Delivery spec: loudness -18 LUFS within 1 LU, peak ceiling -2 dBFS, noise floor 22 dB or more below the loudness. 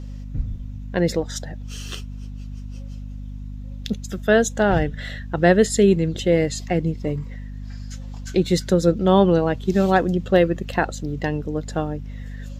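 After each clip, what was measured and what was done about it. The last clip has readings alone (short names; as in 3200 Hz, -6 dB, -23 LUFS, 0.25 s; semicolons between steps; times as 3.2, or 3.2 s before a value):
hum 50 Hz; harmonics up to 250 Hz; hum level -31 dBFS; loudness -21.0 LUFS; peak -2.5 dBFS; loudness target -18.0 LUFS
-> de-hum 50 Hz, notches 5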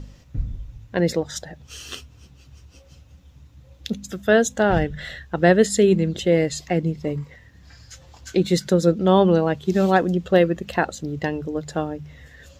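hum none; loudness -21.0 LUFS; peak -3.0 dBFS; loudness target -18.0 LUFS
-> gain +3 dB; limiter -2 dBFS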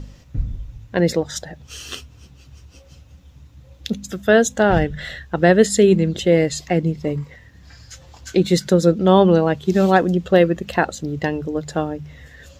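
loudness -18.0 LUFS; peak -2.0 dBFS; noise floor -47 dBFS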